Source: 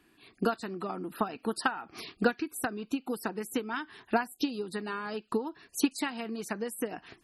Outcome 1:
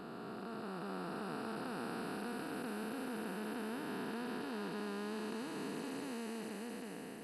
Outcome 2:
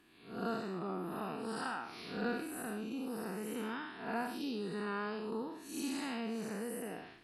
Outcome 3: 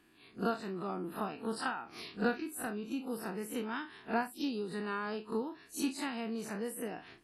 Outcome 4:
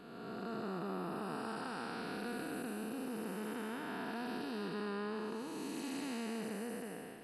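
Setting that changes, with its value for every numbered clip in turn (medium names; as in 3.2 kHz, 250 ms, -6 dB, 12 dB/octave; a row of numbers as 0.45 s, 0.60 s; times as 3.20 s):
spectral blur, width: 1780 ms, 205 ms, 81 ms, 658 ms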